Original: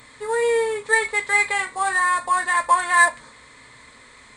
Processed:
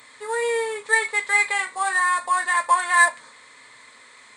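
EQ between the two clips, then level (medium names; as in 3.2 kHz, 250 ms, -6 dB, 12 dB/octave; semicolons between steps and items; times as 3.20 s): high-pass 600 Hz 6 dB/octave; 0.0 dB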